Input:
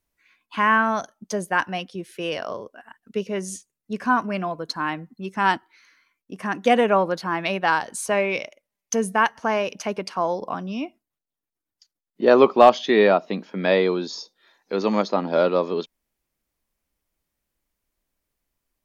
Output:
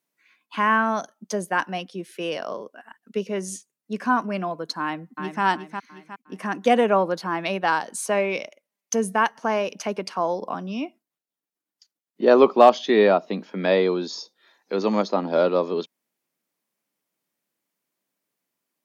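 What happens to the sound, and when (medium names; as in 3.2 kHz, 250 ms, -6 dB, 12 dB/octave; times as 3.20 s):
4.81–5.43 s: echo throw 360 ms, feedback 40%, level -7 dB
whole clip: high-pass 160 Hz 24 dB/octave; dynamic bell 2.1 kHz, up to -3 dB, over -34 dBFS, Q 0.8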